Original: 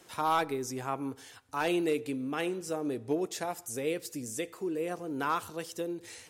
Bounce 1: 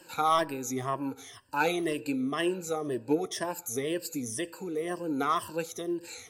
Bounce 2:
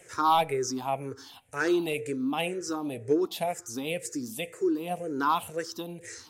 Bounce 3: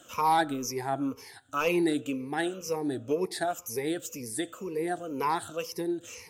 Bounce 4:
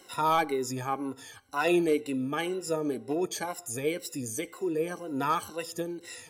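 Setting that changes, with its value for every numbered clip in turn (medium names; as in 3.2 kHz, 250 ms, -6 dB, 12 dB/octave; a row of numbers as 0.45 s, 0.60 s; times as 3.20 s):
drifting ripple filter, ripples per octave: 1.3, 0.5, 0.84, 2.1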